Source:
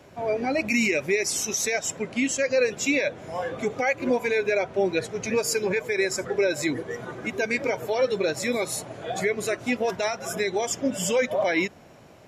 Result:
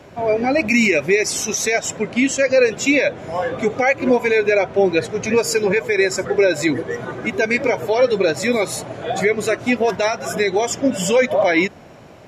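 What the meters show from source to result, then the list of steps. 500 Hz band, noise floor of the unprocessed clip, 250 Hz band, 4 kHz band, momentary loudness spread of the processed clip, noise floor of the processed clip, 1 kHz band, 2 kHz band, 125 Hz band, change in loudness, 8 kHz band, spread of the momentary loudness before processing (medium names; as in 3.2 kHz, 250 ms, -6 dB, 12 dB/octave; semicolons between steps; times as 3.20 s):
+8.0 dB, -50 dBFS, +8.0 dB, +6.0 dB, 6 LU, -42 dBFS, +8.0 dB, +7.5 dB, +8.0 dB, +7.5 dB, +4.0 dB, 6 LU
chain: treble shelf 6.6 kHz -7.5 dB; trim +8 dB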